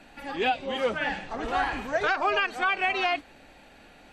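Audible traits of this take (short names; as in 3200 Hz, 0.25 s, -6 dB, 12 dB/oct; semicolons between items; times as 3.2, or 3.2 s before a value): noise floor -53 dBFS; spectral tilt -0.5 dB/oct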